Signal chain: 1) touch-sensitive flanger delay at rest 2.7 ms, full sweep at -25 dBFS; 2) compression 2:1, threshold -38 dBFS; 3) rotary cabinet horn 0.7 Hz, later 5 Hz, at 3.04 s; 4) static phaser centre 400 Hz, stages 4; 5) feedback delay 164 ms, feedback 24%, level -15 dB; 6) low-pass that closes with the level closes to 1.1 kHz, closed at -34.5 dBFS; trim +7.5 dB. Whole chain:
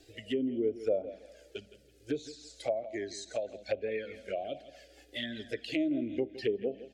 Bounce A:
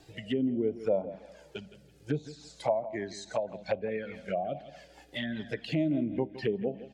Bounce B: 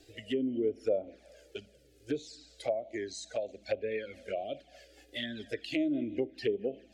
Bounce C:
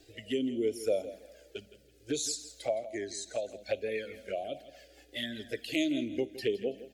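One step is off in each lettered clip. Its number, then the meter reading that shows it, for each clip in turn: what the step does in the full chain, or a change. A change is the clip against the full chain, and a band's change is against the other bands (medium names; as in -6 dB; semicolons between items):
4, 125 Hz band +10.0 dB; 5, momentary loudness spread change -2 LU; 6, 8 kHz band +11.5 dB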